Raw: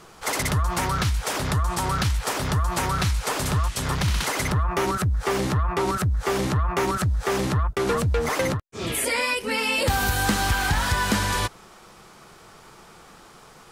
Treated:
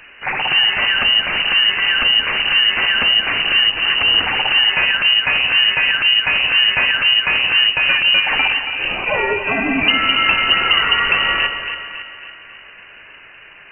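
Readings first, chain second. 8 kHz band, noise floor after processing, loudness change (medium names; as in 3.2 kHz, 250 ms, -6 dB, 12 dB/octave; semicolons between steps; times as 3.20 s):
under -40 dB, -41 dBFS, +11.0 dB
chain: two-band feedback delay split 2 kHz, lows 277 ms, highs 177 ms, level -8 dB; frequency inversion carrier 2.9 kHz; trim +6.5 dB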